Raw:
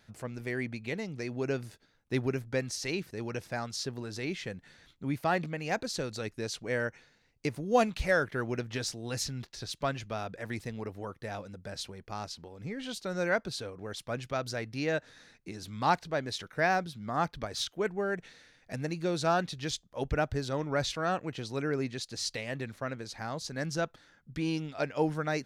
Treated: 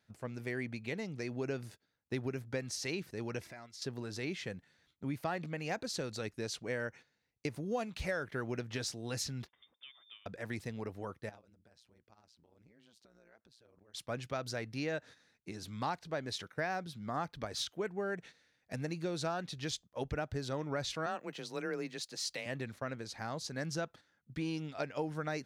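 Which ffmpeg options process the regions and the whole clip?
ffmpeg -i in.wav -filter_complex "[0:a]asettb=1/sr,asplit=3[link_01][link_02][link_03];[link_01]atrim=end=3.414[link_04];[link_02]atrim=start=3.41:end=3.82,asetpts=PTS-STARTPTS,afade=type=in:duration=0.004:curve=qsin,afade=type=out:start_time=0.406:duration=0.004:curve=qsin,equalizer=frequency=2100:width=4.1:gain=9.5,aecho=1:1:3:0.41,atrim=end_sample=18081,acompressor=threshold=-46dB:ratio=4:attack=3.2:release=140:knee=1:detection=peak[link_05];[link_03]atrim=start=3.816[link_06];[link_04][link_05]acrossfade=duration=0.004:curve1=hsin:curve2=qsin[link_07];[link_07][link_06]acrossfade=duration=0.004:curve1=qsin:curve2=hsin,asettb=1/sr,asplit=3[link_08][link_09][link_10];[link_08]atrim=end=9.484[link_11];[link_09]atrim=start=9.48:end=10.26,asetpts=PTS-STARTPTS,afade=type=in:duration=0.004:curve=qsin,afade=type=out:start_time=0.776:duration=0.004:curve=qsin,highpass=frequency=85:poles=1,acompressor=threshold=-45dB:ratio=12:attack=3.2:release=140:knee=1:detection=peak,lowpass=frequency=3100:width_type=q:width=0.5098,lowpass=frequency=3100:width_type=q:width=0.6013,lowpass=frequency=3100:width_type=q:width=0.9,lowpass=frequency=3100:width_type=q:width=2.563,afreqshift=-3700[link_12];[link_10]atrim=start=10.256[link_13];[link_11][link_12]acrossfade=duration=0.004:curve1=hsin:curve2=qsin[link_14];[link_14][link_13]acrossfade=duration=0.004:curve1=qsin:curve2=hsin,asettb=1/sr,asplit=3[link_15][link_16][link_17];[link_15]atrim=end=11.294[link_18];[link_16]atrim=start=11.29:end=13.94,asetpts=PTS-STARTPTS,afade=type=in:duration=0.004:curve=qsin,afade=type=out:start_time=2.646:duration=0.004:curve=qsin,acompressor=threshold=-45dB:ratio=8:attack=3.2:release=140:knee=1:detection=peak,tremolo=f=120:d=0.889[link_19];[link_17]atrim=start=13.936[link_20];[link_18][link_19]acrossfade=duration=0.004:curve1=hsin:curve2=qsin[link_21];[link_21][link_20]acrossfade=duration=0.004:curve1=qsin:curve2=hsin,asettb=1/sr,asplit=3[link_22][link_23][link_24];[link_22]atrim=end=21.064[link_25];[link_23]atrim=start=21.06:end=22.46,asetpts=PTS-STARTPTS,afade=type=in:duration=0.004:curve=qsin,afade=type=out:start_time=1.396:duration=0.004:curve=qsin,lowpass=frequency=2700:poles=1,aemphasis=mode=production:type=bsi,afreqshift=23[link_26];[link_24]atrim=start=22.456[link_27];[link_25][link_26]acrossfade=duration=0.004:curve1=hsin:curve2=qsin[link_28];[link_28][link_27]acrossfade=duration=0.004:curve1=qsin:curve2=hsin,agate=range=-10dB:threshold=-48dB:ratio=16:detection=peak,highpass=61,acompressor=threshold=-30dB:ratio=6,volume=-2.5dB" out.wav

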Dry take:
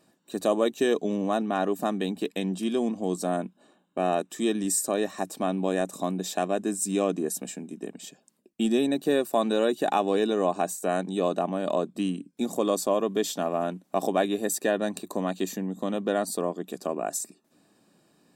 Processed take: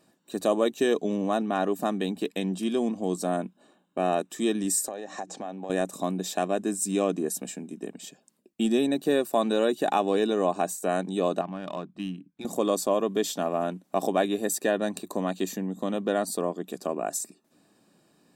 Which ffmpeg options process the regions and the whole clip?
ffmpeg -i in.wav -filter_complex "[0:a]asettb=1/sr,asplit=3[link_01][link_02][link_03];[link_01]atrim=end=4.884[link_04];[link_02]atrim=start=4.88:end=5.7,asetpts=PTS-STARTPTS,afade=type=in:duration=0.004:curve=qsin,afade=type=out:start_time=0.816:duration=0.004:curve=qsin,bandreject=frequency=60:width_type=h:width=6,bandreject=frequency=120:width_type=h:width=6,bandreject=frequency=180:width_type=h:width=6,bandreject=frequency=240:width_type=h:width=6,bandreject=frequency=300:width_type=h:width=6,bandreject=frequency=360:width_type=h:width=6,acompressor=threshold=-34dB:ratio=16:attack=3.2:release=140:knee=1:detection=peak,highpass=120,equalizer=frequency=520:width_type=q:width=4:gain=5,equalizer=frequency=780:width_type=q:width=4:gain=9,equalizer=frequency=1700:width_type=q:width=4:gain=4,equalizer=frequency=6600:width_type=q:width=4:gain=7,lowpass=frequency=7500:width=0.5412,lowpass=frequency=7500:width=1.3066[link_05];[link_03]atrim=start=5.696[link_06];[link_04][link_05]acrossfade=duration=0.004:curve1=hsin:curve2=qsin[link_07];[link_07][link_06]acrossfade=duration=0.004:curve1=qsin:curve2=hsin,asettb=1/sr,asplit=3[link_08][link_09][link_10];[link_08]atrim=end=11.414[link_11];[link_09]atrim=start=11.41:end=12.45,asetpts=PTS-STARTPTS,afade=type=in:duration=0.004:curve=qsin,afade=type=out:start_time=1.036:duration=0.004:curve=qsin,equalizer=frequency=480:width_type=o:width=1.4:gain=-12.5,bandreject=frequency=240:width=5,adynamicsmooth=sensitivity=5.5:basefreq=2200[link_12];[link_10]atrim=start=12.446[link_13];[link_11][link_12]acrossfade=duration=0.004:curve1=hsin:curve2=qsin[link_14];[link_14][link_13]acrossfade=duration=0.004:curve1=qsin:curve2=hsin" out.wav

